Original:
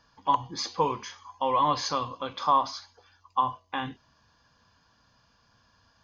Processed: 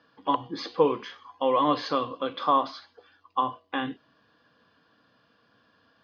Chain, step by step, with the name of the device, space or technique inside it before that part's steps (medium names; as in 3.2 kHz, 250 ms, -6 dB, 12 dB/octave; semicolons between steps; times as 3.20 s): kitchen radio (cabinet simulation 190–3700 Hz, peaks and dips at 300 Hz +6 dB, 460 Hz +5 dB, 920 Hz -9 dB, 2.3 kHz -4 dB); trim +3.5 dB